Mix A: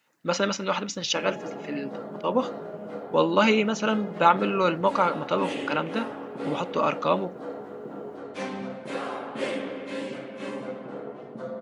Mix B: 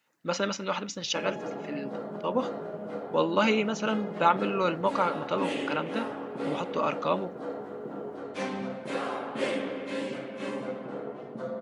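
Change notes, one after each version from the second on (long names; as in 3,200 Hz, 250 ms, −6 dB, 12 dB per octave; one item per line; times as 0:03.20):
speech −4.0 dB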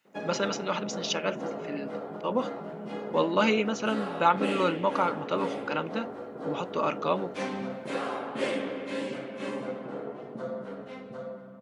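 background: entry −1.00 s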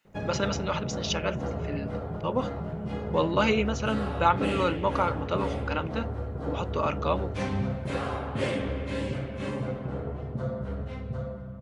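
background: remove high-pass filter 220 Hz 24 dB per octave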